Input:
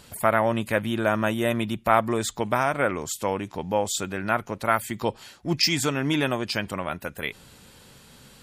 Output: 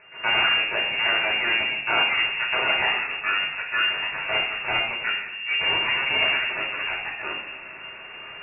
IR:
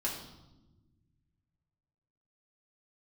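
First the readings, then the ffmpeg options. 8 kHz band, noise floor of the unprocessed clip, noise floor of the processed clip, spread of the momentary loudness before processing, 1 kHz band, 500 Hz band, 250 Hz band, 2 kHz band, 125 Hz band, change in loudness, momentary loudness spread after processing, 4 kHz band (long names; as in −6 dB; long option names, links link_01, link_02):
below −40 dB, −52 dBFS, −40 dBFS, 9 LU, −3.0 dB, −8.5 dB, −15.5 dB, +9.0 dB, −15.5 dB, +3.5 dB, 11 LU, can't be measured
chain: -filter_complex "[0:a]asplit=2[link_01][link_02];[link_02]alimiter=limit=-13.5dB:level=0:latency=1,volume=0dB[link_03];[link_01][link_03]amix=inputs=2:normalize=0,aeval=exprs='abs(val(0))':channel_layout=same,areverse,acompressor=mode=upward:threshold=-20dB:ratio=2.5,areverse,lowshelf=frequency=260:gain=-11.5[link_04];[1:a]atrim=start_sample=2205,asetrate=37044,aresample=44100[link_05];[link_04][link_05]afir=irnorm=-1:irlink=0,lowpass=frequency=2400:width_type=q:width=0.5098,lowpass=frequency=2400:width_type=q:width=0.6013,lowpass=frequency=2400:width_type=q:width=0.9,lowpass=frequency=2400:width_type=q:width=2.563,afreqshift=-2800,volume=-4.5dB"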